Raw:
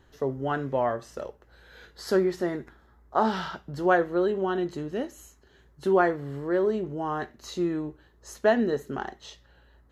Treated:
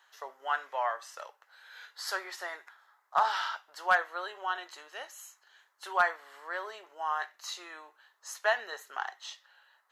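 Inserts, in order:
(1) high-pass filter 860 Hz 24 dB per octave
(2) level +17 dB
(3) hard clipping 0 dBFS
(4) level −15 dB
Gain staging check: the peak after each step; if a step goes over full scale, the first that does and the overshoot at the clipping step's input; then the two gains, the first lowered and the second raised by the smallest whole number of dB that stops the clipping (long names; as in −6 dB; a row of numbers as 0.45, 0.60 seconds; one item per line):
−12.5, +4.5, 0.0, −15.0 dBFS
step 2, 4.5 dB
step 2 +12 dB, step 4 −10 dB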